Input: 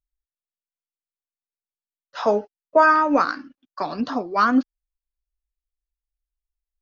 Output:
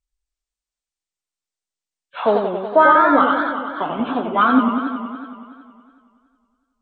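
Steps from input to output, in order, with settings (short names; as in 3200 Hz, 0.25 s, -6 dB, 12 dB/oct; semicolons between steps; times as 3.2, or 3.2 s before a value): nonlinear frequency compression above 1500 Hz 1.5:1; warbling echo 93 ms, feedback 75%, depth 173 cents, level -6 dB; gain +2.5 dB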